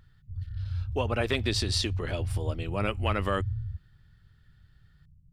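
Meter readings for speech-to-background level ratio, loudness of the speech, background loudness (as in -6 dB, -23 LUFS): 4.0 dB, -31.0 LUFS, -35.0 LUFS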